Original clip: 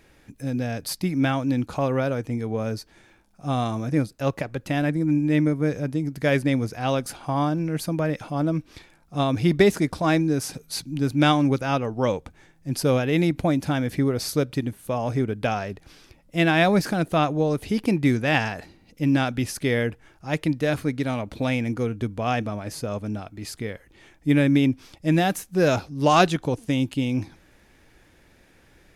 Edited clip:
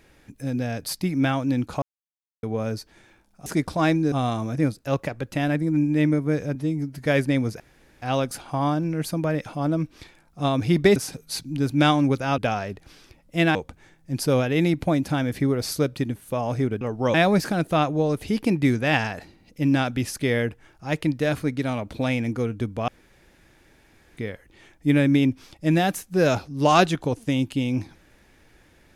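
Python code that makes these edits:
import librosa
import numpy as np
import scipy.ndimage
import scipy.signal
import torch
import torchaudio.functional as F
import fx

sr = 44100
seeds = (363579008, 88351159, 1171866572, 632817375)

y = fx.edit(x, sr, fx.silence(start_s=1.82, length_s=0.61),
    fx.stretch_span(start_s=5.89, length_s=0.34, factor=1.5),
    fx.insert_room_tone(at_s=6.77, length_s=0.42),
    fx.move(start_s=9.71, length_s=0.66, to_s=3.46),
    fx.swap(start_s=11.79, length_s=0.33, other_s=15.38, other_length_s=1.17),
    fx.room_tone_fill(start_s=22.29, length_s=1.29), tone=tone)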